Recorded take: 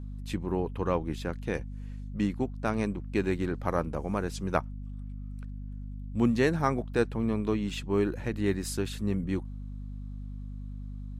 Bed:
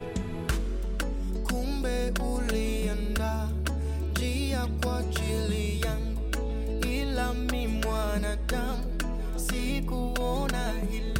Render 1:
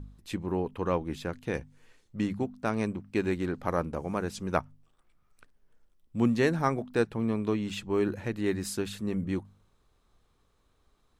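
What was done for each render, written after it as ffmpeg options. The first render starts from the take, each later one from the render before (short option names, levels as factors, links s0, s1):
-af "bandreject=f=50:t=h:w=4,bandreject=f=100:t=h:w=4,bandreject=f=150:t=h:w=4,bandreject=f=200:t=h:w=4,bandreject=f=250:t=h:w=4"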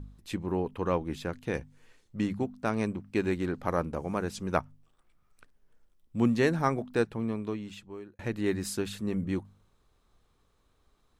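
-filter_complex "[0:a]asplit=2[s0][s1];[s0]atrim=end=8.19,asetpts=PTS-STARTPTS,afade=t=out:st=6.91:d=1.28[s2];[s1]atrim=start=8.19,asetpts=PTS-STARTPTS,afade=t=in:d=0.004:c=hsin[s3];[s2][s3]concat=n=2:v=0:a=1"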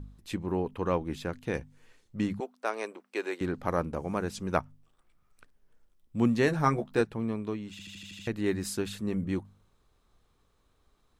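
-filter_complex "[0:a]asettb=1/sr,asplit=3[s0][s1][s2];[s0]atrim=end=2.404[s3];[s1]atrim=start=2.4:end=3.41,asetpts=PTS-STARTPTS,afade=t=in:d=0.004:c=qsin,afade=t=out:st=1.006:d=0.004:c=qsin,highpass=f=400:w=0.5412,highpass=f=400:w=1.3066[s4];[s2]atrim=start=3.406[s5];[s3][s4]acrossfade=d=0.004:c1=hsin:c2=qsin[s6];[s6][s5]acrossfade=d=0.004:c1=qsin:c2=hsin,asettb=1/sr,asplit=3[s7][s8][s9];[s7]atrim=end=6.464[s10];[s8]atrim=start=6.46:end=7.01,asetpts=PTS-STARTPTS,afade=t=in:d=0.004:c=qsin,afade=t=out:st=0.546:d=0.004:c=qsin,asplit=2[s11][s12];[s12]adelay=14,volume=0.596[s13];[s11][s13]amix=inputs=2:normalize=0,atrim=end_sample=24255[s14];[s9]atrim=start=7.006[s15];[s10][s14]acrossfade=d=0.004:c1=hsin:c2=qsin[s16];[s16][s15]acrossfade=d=0.004:c1=qsin:c2=hsin,asplit=8[s17][s18][s19][s20][s21][s22][s23][s24];[s17]atrim=end=7.792[s25];[s18]atrim=start=7.708:end=7.792[s26];[s19]atrim=start=7.708:end=7.792[s27];[s20]atrim=start=7.708:end=7.792[s28];[s21]atrim=start=7.708:end=7.792[s29];[s22]atrim=start=7.708:end=7.792[s30];[s23]atrim=start=7.708:end=7.792[s31];[s24]atrim=start=8.268[s32];[s25][s26]acrossfade=d=0.004:c1=hsin:c2=hsin[s33];[s33][s27]acrossfade=d=0.004:c1=hsin:c2=hsin[s34];[s34][s28]acrossfade=d=0.004:c1=hsin:c2=hsin[s35];[s35][s29]acrossfade=d=0.004:c1=hsin:c2=hsin[s36];[s36][s30]acrossfade=d=0.004:c1=hsin:c2=hsin[s37];[s37][s31]acrossfade=d=0.004:c1=hsin:c2=hsin[s38];[s38][s32]acrossfade=d=0.004:c1=hsin:c2=hsin"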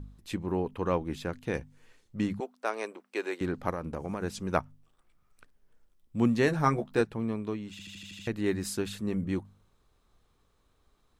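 -filter_complex "[0:a]asplit=3[s0][s1][s2];[s0]afade=t=out:st=3.7:d=0.02[s3];[s1]acompressor=threshold=0.0355:ratio=10:attack=3.2:release=140:knee=1:detection=peak,afade=t=in:st=3.7:d=0.02,afade=t=out:st=4.21:d=0.02[s4];[s2]afade=t=in:st=4.21:d=0.02[s5];[s3][s4][s5]amix=inputs=3:normalize=0"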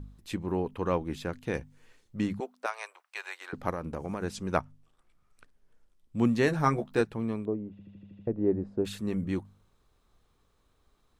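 -filter_complex "[0:a]asettb=1/sr,asplit=3[s0][s1][s2];[s0]atrim=end=2.664[s3];[s1]atrim=start=2.66:end=3.53,asetpts=PTS-STARTPTS,afade=t=in:d=0.004:c=qsin,afade=t=out:st=0.866:d=0.004:c=qsin,highpass=f=760:w=0.5412,highpass=f=760:w=1.3066[s4];[s2]atrim=start=3.526[s5];[s3][s4]acrossfade=d=0.004:c1=hsin:c2=qsin[s6];[s6][s5]acrossfade=d=0.004:c1=qsin:c2=hsin,asettb=1/sr,asplit=3[s7][s8][s9];[s7]atrim=end=4.264[s10];[s8]atrim=start=4.26:end=6.24,asetpts=PTS-STARTPTS,afade=t=in:d=0.004:c=qsin,afade=t=out:st=1.976:d=0.004:c=qsin,lowpass=12000[s11];[s9]atrim=start=6.236[s12];[s10][s11]acrossfade=d=0.004:c1=hsin:c2=qsin[s13];[s13][s12]acrossfade=d=0.004:c1=qsin:c2=hsin,asettb=1/sr,asplit=3[s14][s15][s16];[s14]atrim=end=7.454[s17];[s15]atrim=start=7.45:end=8.85,asetpts=PTS-STARTPTS,afade=t=in:d=0.004:c=qsin,afade=t=out:st=1.396:d=0.004:c=qsin,lowpass=f=570:t=q:w=1.7[s18];[s16]atrim=start=8.846[s19];[s17][s18]acrossfade=d=0.004:c1=hsin:c2=qsin[s20];[s20][s19]acrossfade=d=0.004:c1=qsin:c2=hsin"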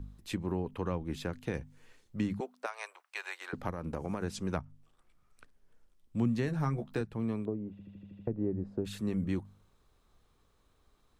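-filter_complex "[0:a]acrossover=split=200[s0][s1];[s1]acompressor=threshold=0.0224:ratio=10[s2];[s0][s2]amix=inputs=2:normalize=0"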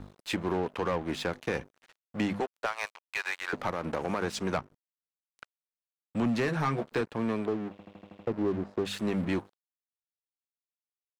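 -filter_complex "[0:a]aeval=exprs='sgn(val(0))*max(abs(val(0))-0.00251,0)':c=same,asplit=2[s0][s1];[s1]highpass=f=720:p=1,volume=11.2,asoftclip=type=tanh:threshold=0.126[s2];[s0][s2]amix=inputs=2:normalize=0,lowpass=f=3700:p=1,volume=0.501"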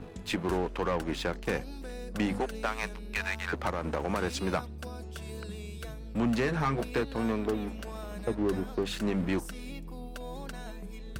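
-filter_complex "[1:a]volume=0.251[s0];[0:a][s0]amix=inputs=2:normalize=0"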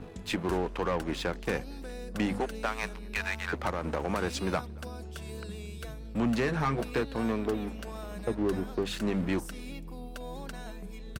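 -filter_complex "[0:a]asplit=2[s0][s1];[s1]adelay=227.4,volume=0.0501,highshelf=f=4000:g=-5.12[s2];[s0][s2]amix=inputs=2:normalize=0"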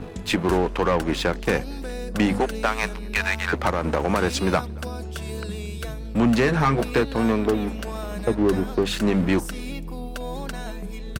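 -af "volume=2.82"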